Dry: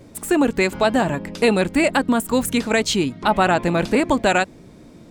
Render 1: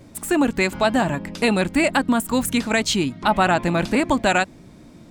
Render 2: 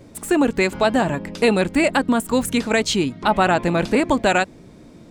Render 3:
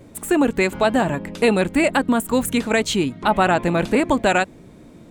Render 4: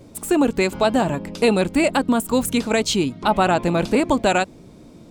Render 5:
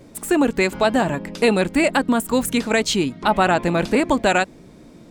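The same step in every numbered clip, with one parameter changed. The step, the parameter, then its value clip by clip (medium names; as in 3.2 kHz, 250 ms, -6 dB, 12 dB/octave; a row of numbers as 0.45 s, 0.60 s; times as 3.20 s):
peaking EQ, frequency: 450 Hz, 16 kHz, 5.1 kHz, 1.8 kHz, 94 Hz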